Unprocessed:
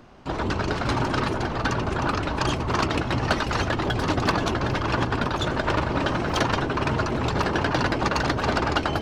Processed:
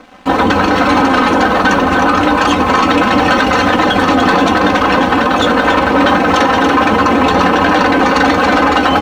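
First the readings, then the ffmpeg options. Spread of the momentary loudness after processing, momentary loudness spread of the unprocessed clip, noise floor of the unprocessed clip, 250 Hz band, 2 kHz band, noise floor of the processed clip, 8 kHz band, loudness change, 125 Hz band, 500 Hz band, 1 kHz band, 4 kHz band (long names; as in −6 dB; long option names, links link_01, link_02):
1 LU, 2 LU, −30 dBFS, +15.0 dB, +15.0 dB, −14 dBFS, +10.0 dB, +14.0 dB, +3.5 dB, +13.5 dB, +16.0 dB, +12.0 dB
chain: -filter_complex "[0:a]highpass=frequency=290:poles=1,highshelf=frequency=4200:gain=-10,bandreject=frequency=4900:width=9.2,flanger=delay=9.9:depth=1.5:regen=61:speed=1.3:shape=triangular,asoftclip=type=tanh:threshold=-21.5dB,asplit=2[link_01][link_02];[link_02]aecho=0:1:283:0.376[link_03];[link_01][link_03]amix=inputs=2:normalize=0,aeval=exprs='sgn(val(0))*max(abs(val(0))-0.00133,0)':channel_layout=same,aecho=1:1:3.9:0.89,alimiter=level_in=23.5dB:limit=-1dB:release=50:level=0:latency=1,volume=-1dB"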